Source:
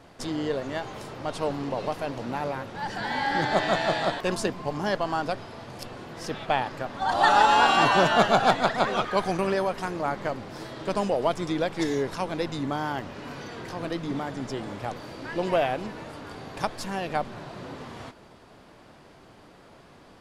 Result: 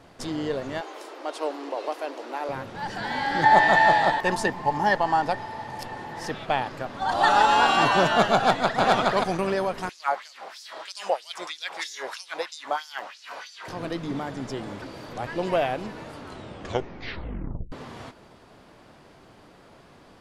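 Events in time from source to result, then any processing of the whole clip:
0:00.81–0:02.49: elliptic high-pass filter 310 Hz, stop band 60 dB
0:03.43–0:06.31: hollow resonant body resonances 870/1,800 Hz, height 17 dB
0:08.36–0:08.81: delay throw 420 ms, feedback 10%, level −0.5 dB
0:09.89–0:13.68: auto-filter high-pass sine 3.1 Hz 640–5,700 Hz
0:14.82–0:15.27: reverse
0:16.16: tape stop 1.56 s

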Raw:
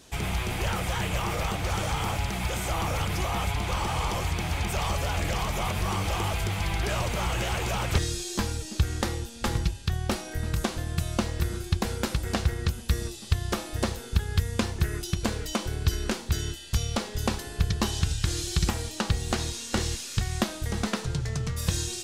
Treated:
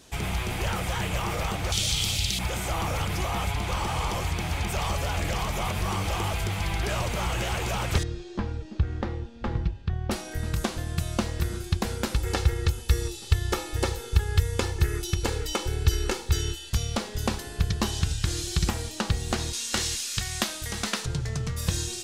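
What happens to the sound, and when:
0:01.72–0:02.39: drawn EQ curve 110 Hz 0 dB, 620 Hz −9 dB, 960 Hz −15 dB, 1,600 Hz −9 dB, 3,800 Hz +15 dB, 14,000 Hz +6 dB
0:08.03–0:10.11: head-to-tape spacing loss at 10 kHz 35 dB
0:12.15–0:16.70: comb filter 2.3 ms
0:19.53–0:21.06: tilt shelving filter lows −6 dB, about 1,100 Hz

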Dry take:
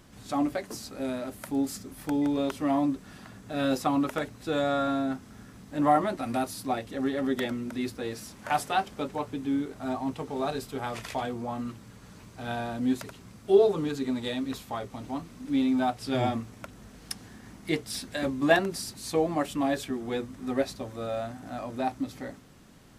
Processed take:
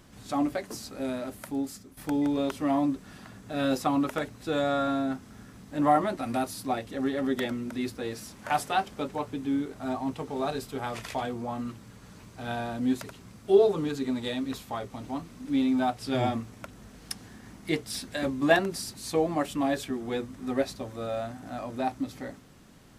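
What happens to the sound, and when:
0:01.31–0:01.97: fade out, to −10.5 dB

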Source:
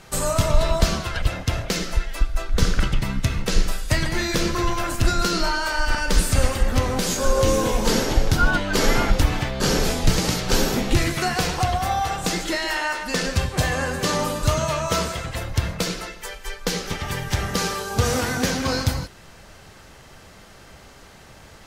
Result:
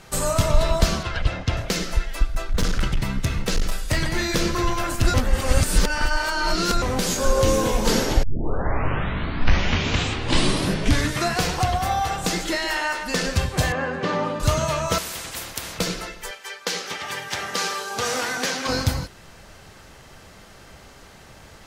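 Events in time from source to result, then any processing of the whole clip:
0:01.03–0:01.57: low-pass filter 5,300 Hz
0:02.27–0:04.34: hard clipping −15.5 dBFS
0:05.14–0:06.82: reverse
0:08.23: tape start 3.20 s
0:13.72–0:14.40: band-pass filter 140–2,500 Hz
0:14.98–0:15.79: every bin compressed towards the loudest bin 4 to 1
0:16.31–0:18.69: meter weighting curve A

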